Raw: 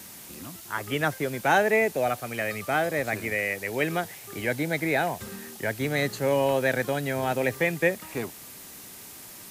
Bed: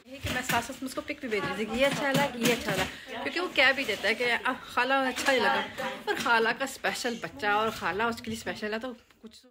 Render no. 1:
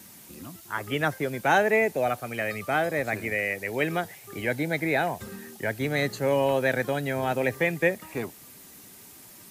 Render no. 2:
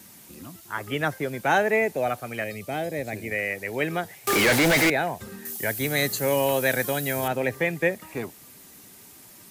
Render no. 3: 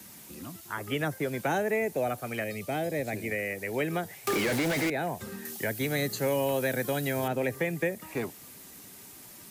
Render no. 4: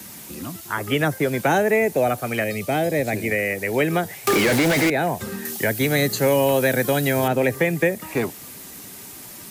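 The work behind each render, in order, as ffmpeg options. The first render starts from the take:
-af "afftdn=nr=6:nf=-45"
-filter_complex "[0:a]asettb=1/sr,asplit=3[s0][s1][s2];[s0]atrim=end=2.444[s3];[s1]atrim=start=2.44:end=3.31,asetpts=PTS-STARTPTS,afade=t=in:d=0.004:c=qsin,afade=t=out:st=0.866:d=0.004:c=qsin,equalizer=f=1300:w=1.3:g=-13.5[s4];[s2]atrim=start=3.306[s5];[s3][s4]acrossfade=d=0.004:c1=hsin:c2=qsin[s6];[s6][s5]acrossfade=d=0.004:c1=qsin:c2=hsin,asettb=1/sr,asplit=3[s7][s8][s9];[s7]atrim=end=4.274[s10];[s8]atrim=start=4.27:end=4.9,asetpts=PTS-STARTPTS,afade=t=in:d=0.004:c=qsin,afade=t=out:st=0.626:d=0.004:c=qsin,asplit=2[s11][s12];[s12]highpass=f=720:p=1,volume=89.1,asoftclip=type=tanh:threshold=0.237[s13];[s11][s13]amix=inputs=2:normalize=0,lowpass=f=6100:p=1,volume=0.501[s14];[s9]atrim=start=4.896[s15];[s10][s14]acrossfade=d=0.004:c1=hsin:c2=qsin[s16];[s16][s15]acrossfade=d=0.004:c1=qsin:c2=hsin,asettb=1/sr,asplit=3[s17][s18][s19];[s17]atrim=end=5.454[s20];[s18]atrim=start=5.45:end=7.28,asetpts=PTS-STARTPTS,afade=t=in:d=0.004:c=qsin,afade=t=out:st=1.826:d=0.004:c=qsin,aemphasis=mode=production:type=75kf[s21];[s19]atrim=start=7.276[s22];[s20][s21]acrossfade=d=0.004:c1=hsin:c2=qsin[s23];[s23][s22]acrossfade=d=0.004:c1=qsin:c2=hsin"
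-filter_complex "[0:a]acrossover=split=87|510|6400[s0][s1][s2][s3];[s0]acompressor=threshold=0.00112:ratio=4[s4];[s1]acompressor=threshold=0.0398:ratio=4[s5];[s2]acompressor=threshold=0.0251:ratio=4[s6];[s3]acompressor=threshold=0.00891:ratio=4[s7];[s4][s5][s6][s7]amix=inputs=4:normalize=0"
-af "volume=2.99"

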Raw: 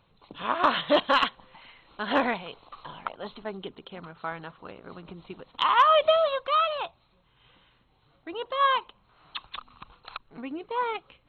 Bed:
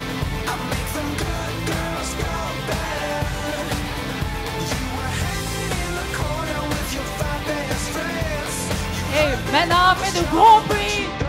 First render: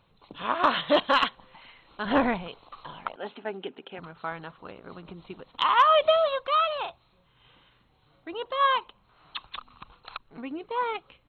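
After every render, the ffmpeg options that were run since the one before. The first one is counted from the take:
-filter_complex "[0:a]asettb=1/sr,asplit=3[s0][s1][s2];[s0]atrim=end=2.054[s3];[s1]atrim=start=2.05:end=2.48,asetpts=PTS-STARTPTS,afade=t=in:d=0.004:c=qsin,afade=t=out:st=0.426:d=0.004:c=qsin,aemphasis=mode=reproduction:type=bsi[s4];[s2]atrim=start=2.476[s5];[s3][s4]acrossfade=d=0.004:c1=hsin:c2=qsin[s6];[s6][s5]acrossfade=d=0.004:c1=qsin:c2=hsin,asettb=1/sr,asplit=3[s7][s8][s9];[s7]atrim=end=3.164[s10];[s8]atrim=start=3.16:end=3.99,asetpts=PTS-STARTPTS,afade=t=in:d=0.004:c=qsin,afade=t=out:st=0.826:d=0.004:c=qsin,highpass=230,equalizer=f=260:t=q:w=4:g=5,equalizer=f=400:t=q:w=4:g=3,equalizer=f=810:t=q:w=4:g=5,equalizer=f=1100:t=q:w=4:g=-7,equalizer=f=1600:t=q:w=4:g=6,equalizer=f=2600:t=q:w=4:g=6,lowpass=f=3300:w=0.5412,lowpass=f=3300:w=1.3066[s11];[s9]atrim=start=3.986[s12];[s10][s11]acrossfade=d=0.004:c1=hsin:c2=qsin[s13];[s13][s12]acrossfade=d=0.004:c1=qsin:c2=hsin,asplit=3[s14][s15][s16];[s14]afade=t=out:st=6.84:d=0.02[s17];[s15]asplit=2[s18][s19];[s19]adelay=40,volume=0.531[s20];[s18][s20]amix=inputs=2:normalize=0,afade=t=in:st=6.84:d=0.02,afade=t=out:st=8.29:d=0.02[s21];[s16]afade=t=in:st=8.29:d=0.02[s22];[s17][s21][s22]amix=inputs=3:normalize=0"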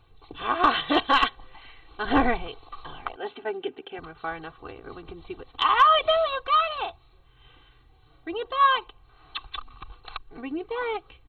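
-af "lowshelf=f=110:g=11,aecho=1:1:2.6:0.79"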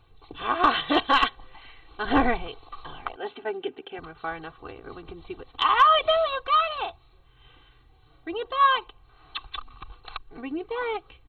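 -af anull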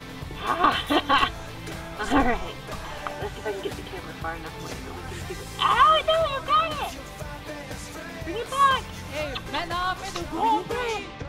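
-filter_complex "[1:a]volume=0.251[s0];[0:a][s0]amix=inputs=2:normalize=0"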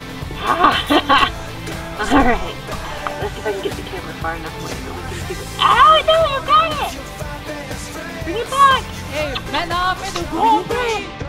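-af "volume=2.66,alimiter=limit=0.891:level=0:latency=1"

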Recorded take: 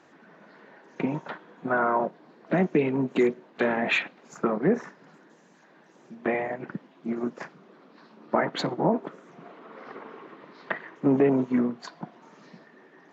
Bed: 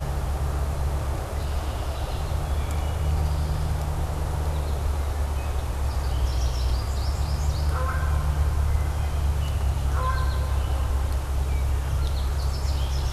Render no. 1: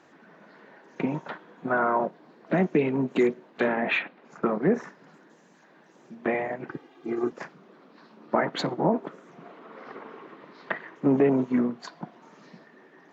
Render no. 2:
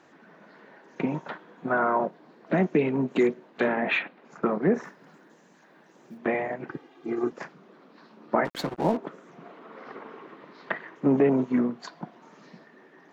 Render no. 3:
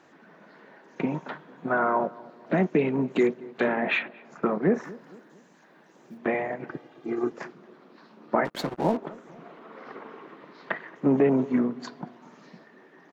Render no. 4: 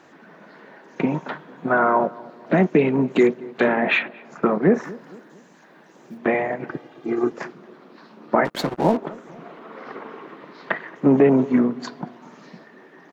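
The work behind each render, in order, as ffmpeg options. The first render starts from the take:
-filter_complex "[0:a]asettb=1/sr,asplit=3[s0][s1][s2];[s0]atrim=end=3.684[s3];[s1]atrim=start=3.68:end=4.43,asetpts=PTS-STARTPTS,afade=t=in:d=0.004:c=qsin,afade=t=out:st=0.746:d=0.004:c=qsin,highpass=140,lowpass=3100[s4];[s2]atrim=start=4.426[s5];[s3][s4]acrossfade=d=0.004:c1=hsin:c2=qsin[s6];[s6][s5]acrossfade=d=0.004:c1=qsin:c2=hsin,asettb=1/sr,asplit=3[s7][s8][s9];[s7]atrim=end=6.694[s10];[s8]atrim=start=6.69:end=7.32,asetpts=PTS-STARTPTS,afade=t=in:d=0.004:c=qsin,afade=t=out:st=0.626:d=0.004:c=qsin,aecho=1:1:2.5:0.97,atrim=end_sample=27783[s11];[s9]atrim=start=7.316[s12];[s10][s11]acrossfade=d=0.004:c1=hsin:c2=qsin[s13];[s13][s12]acrossfade=d=0.004:c1=qsin:c2=hsin"
-filter_complex "[0:a]asettb=1/sr,asplit=3[s0][s1][s2];[s0]atrim=end=4.854[s3];[s1]atrim=start=4.85:end=6.18,asetpts=PTS-STARTPTS,afade=t=in:d=0.004:c=qsin,afade=t=out:st=1.326:d=0.004:c=qsin,acrusher=bits=8:mode=log:mix=0:aa=0.000001[s4];[s2]atrim=start=6.176[s5];[s3][s4]acrossfade=d=0.004:c1=hsin:c2=qsin[s6];[s6][s5]acrossfade=d=0.004:c1=qsin:c2=hsin,asettb=1/sr,asplit=3[s7][s8][s9];[s7]atrim=end=8.454[s10];[s8]atrim=start=8.45:end=8.97,asetpts=PTS-STARTPTS,afade=t=in:d=0.004:c=qsin,afade=t=out:st=0.516:d=0.004:c=qsin,aeval=exprs='sgn(val(0))*max(abs(val(0))-0.0141,0)':c=same[s11];[s9]atrim=start=8.966[s12];[s10][s11]acrossfade=d=0.004:c1=hsin:c2=qsin[s13];[s13][s12]acrossfade=d=0.004:c1=qsin:c2=hsin"
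-filter_complex "[0:a]asplit=2[s0][s1];[s1]adelay=227,lowpass=f=1200:p=1,volume=0.1,asplit=2[s2][s3];[s3]adelay=227,lowpass=f=1200:p=1,volume=0.46,asplit=2[s4][s5];[s5]adelay=227,lowpass=f=1200:p=1,volume=0.46[s6];[s0][s2][s4][s6]amix=inputs=4:normalize=0"
-af "volume=2,alimiter=limit=0.708:level=0:latency=1"

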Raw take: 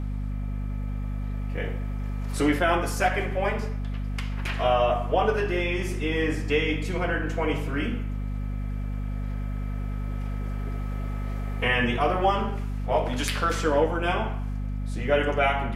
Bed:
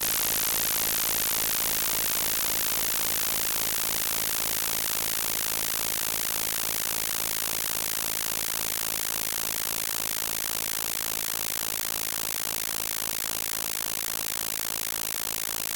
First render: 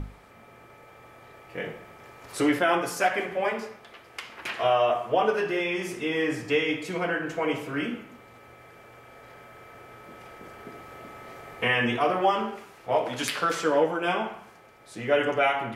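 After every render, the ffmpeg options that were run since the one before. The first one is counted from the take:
-af "bandreject=f=50:t=h:w=6,bandreject=f=100:t=h:w=6,bandreject=f=150:t=h:w=6,bandreject=f=200:t=h:w=6,bandreject=f=250:t=h:w=6"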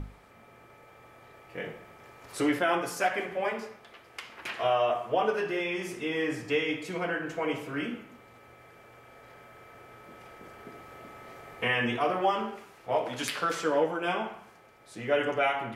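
-af "volume=0.668"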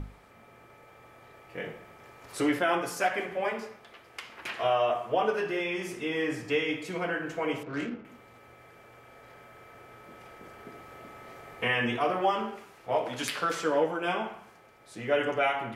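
-filter_complex "[0:a]asettb=1/sr,asplit=3[s0][s1][s2];[s0]atrim=end=7.634[s3];[s1]atrim=start=7.63:end=8.05,asetpts=PTS-STARTPTS,afade=t=in:d=0.004:c=qsin,afade=t=out:st=0.416:d=0.004:c=qsin,adynamicsmooth=sensitivity=5.5:basefreq=1200[s4];[s2]atrim=start=8.046[s5];[s3][s4]acrossfade=d=0.004:c1=hsin:c2=qsin[s6];[s6][s5]acrossfade=d=0.004:c1=qsin:c2=hsin"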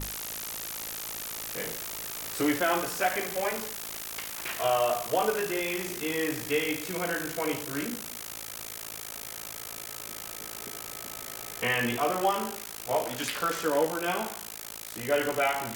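-filter_complex "[1:a]volume=0.282[s0];[0:a][s0]amix=inputs=2:normalize=0"

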